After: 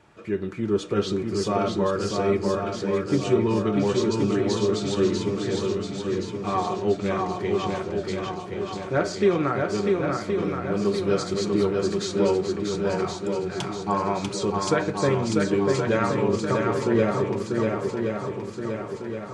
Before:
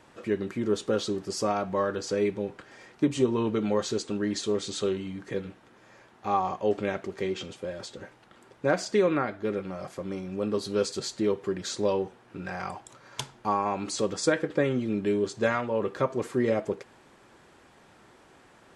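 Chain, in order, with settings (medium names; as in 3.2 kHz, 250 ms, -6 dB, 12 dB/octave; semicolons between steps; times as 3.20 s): bass shelf 190 Hz +4.5 dB; level rider gain up to 3 dB; treble shelf 6.8 kHz -6 dB; de-hum 62.41 Hz, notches 28; tape speed -3%; comb of notches 260 Hz; small resonant body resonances 1.3/2.4 kHz, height 7 dB, ringing for 35 ms; on a send: shuffle delay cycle 1072 ms, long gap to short 1.5:1, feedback 52%, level -3.5 dB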